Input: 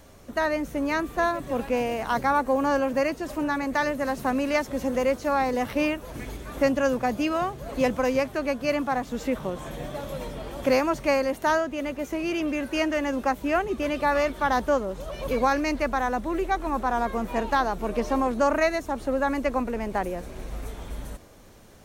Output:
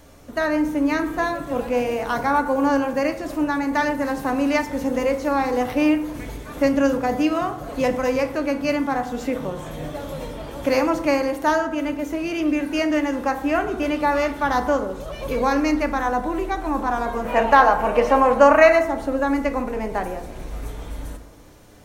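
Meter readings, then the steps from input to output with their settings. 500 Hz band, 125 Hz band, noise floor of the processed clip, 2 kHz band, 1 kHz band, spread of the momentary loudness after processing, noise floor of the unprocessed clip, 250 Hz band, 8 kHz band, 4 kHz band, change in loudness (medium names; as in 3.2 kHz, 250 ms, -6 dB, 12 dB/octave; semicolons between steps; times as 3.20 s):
+4.5 dB, +3.0 dB, -36 dBFS, +4.5 dB, +5.0 dB, 14 LU, -44 dBFS, +5.5 dB, +2.0 dB, +2.5 dB, +5.0 dB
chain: time-frequency box 17.25–18.83 s, 470–3200 Hz +8 dB; FDN reverb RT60 0.85 s, low-frequency decay 1×, high-frequency decay 0.45×, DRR 5.5 dB; trim +1.5 dB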